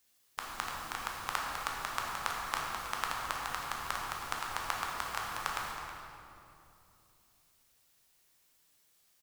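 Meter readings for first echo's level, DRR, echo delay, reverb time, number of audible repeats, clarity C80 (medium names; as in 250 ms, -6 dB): -13.5 dB, -2.5 dB, 320 ms, 2.8 s, 1, 1.0 dB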